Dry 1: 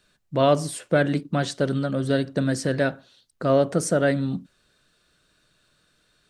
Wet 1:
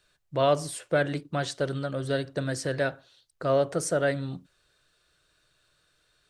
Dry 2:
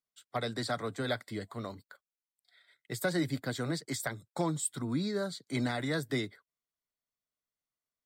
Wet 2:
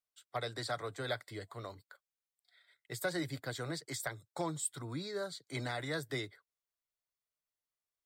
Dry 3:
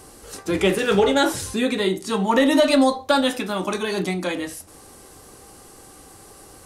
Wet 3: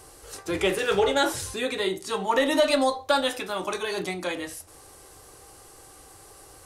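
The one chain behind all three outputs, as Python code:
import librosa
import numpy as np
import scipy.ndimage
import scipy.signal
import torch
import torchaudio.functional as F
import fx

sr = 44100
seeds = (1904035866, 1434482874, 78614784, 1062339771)

y = fx.peak_eq(x, sr, hz=220.0, db=-14.5, octaves=0.59)
y = y * librosa.db_to_amplitude(-3.0)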